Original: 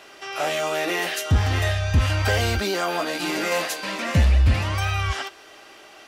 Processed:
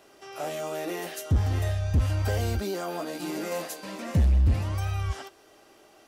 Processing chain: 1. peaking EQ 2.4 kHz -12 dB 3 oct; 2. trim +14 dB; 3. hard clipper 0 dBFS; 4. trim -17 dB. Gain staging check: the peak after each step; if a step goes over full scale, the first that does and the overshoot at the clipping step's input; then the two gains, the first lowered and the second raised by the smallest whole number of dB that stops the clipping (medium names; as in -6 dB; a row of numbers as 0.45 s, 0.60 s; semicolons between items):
-10.5 dBFS, +3.5 dBFS, 0.0 dBFS, -17.0 dBFS; step 2, 3.5 dB; step 2 +10 dB, step 4 -13 dB